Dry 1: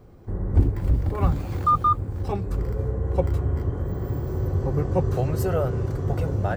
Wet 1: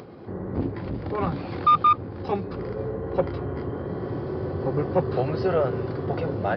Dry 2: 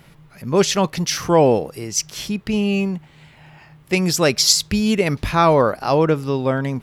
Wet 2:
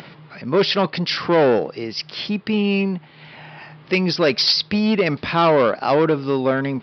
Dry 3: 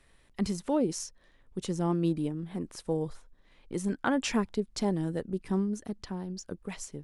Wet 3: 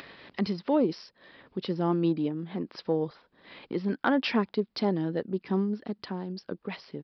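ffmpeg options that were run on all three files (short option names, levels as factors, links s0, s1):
-af "acompressor=mode=upward:threshold=0.02:ratio=2.5,aresample=11025,asoftclip=type=tanh:threshold=0.188,aresample=44100,aeval=exprs='0.282*(cos(1*acos(clip(val(0)/0.282,-1,1)))-cos(1*PI/2))+0.00562*(cos(3*acos(clip(val(0)/0.282,-1,1)))-cos(3*PI/2))':c=same,highpass=190,volume=1.68"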